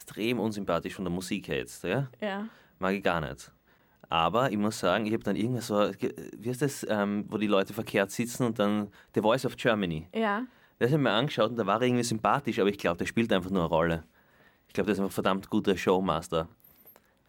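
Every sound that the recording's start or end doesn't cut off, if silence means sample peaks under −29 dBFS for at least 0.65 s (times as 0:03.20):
0:04.12–0:13.97
0:14.75–0:16.42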